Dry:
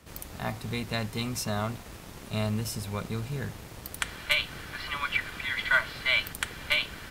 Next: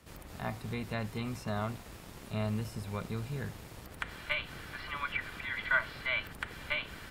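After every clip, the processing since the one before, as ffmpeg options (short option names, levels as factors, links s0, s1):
-filter_complex "[0:a]acrossover=split=2600[s0][s1];[s1]acompressor=threshold=0.00501:ratio=4:attack=1:release=60[s2];[s0][s2]amix=inputs=2:normalize=0,bandreject=f=6100:w=29,volume=0.631"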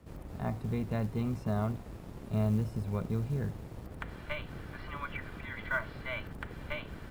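-af "tiltshelf=f=1100:g=8,acrusher=bits=8:mode=log:mix=0:aa=0.000001,volume=0.75"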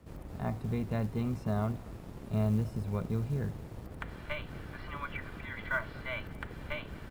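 -af "aecho=1:1:233:0.0668"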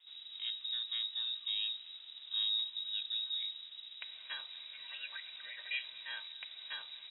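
-af "lowpass=f=3300:t=q:w=0.5098,lowpass=f=3300:t=q:w=0.6013,lowpass=f=3300:t=q:w=0.9,lowpass=f=3300:t=q:w=2.563,afreqshift=-3900,volume=0.501"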